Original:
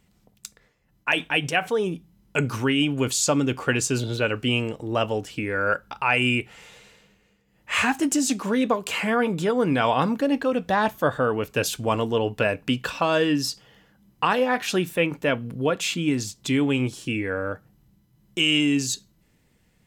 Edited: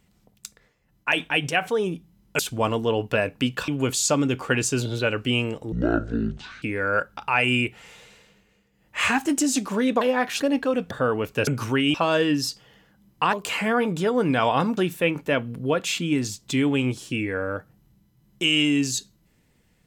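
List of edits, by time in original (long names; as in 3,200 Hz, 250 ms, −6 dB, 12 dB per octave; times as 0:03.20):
0:02.39–0:02.86: swap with 0:11.66–0:12.95
0:04.90–0:05.36: play speed 51%
0:08.75–0:10.19: swap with 0:14.34–0:14.73
0:10.70–0:11.10: remove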